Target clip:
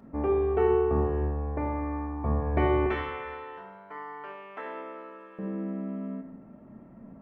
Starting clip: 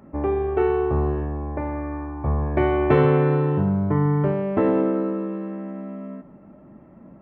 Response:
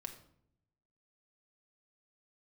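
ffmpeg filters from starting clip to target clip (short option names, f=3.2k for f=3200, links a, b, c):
-filter_complex "[0:a]asettb=1/sr,asplit=3[a][b][c];[a]atrim=end=2.864[d];[b]atrim=start=2.86:end=5.39,asetpts=PTS-STARTPTS,afade=t=in:d=0.004:c=qsin,afade=t=out:st=2.526:d=0.004:c=qsin,highpass=1.3k[e];[c]atrim=start=5.386[f];[d][e]acrossfade=d=0.004:c1=hsin:c2=qsin[g];[g][f]acrossfade=d=0.004:c1=qsin:c2=hsin[h];[1:a]atrim=start_sample=2205[i];[h][i]afir=irnorm=-1:irlink=0"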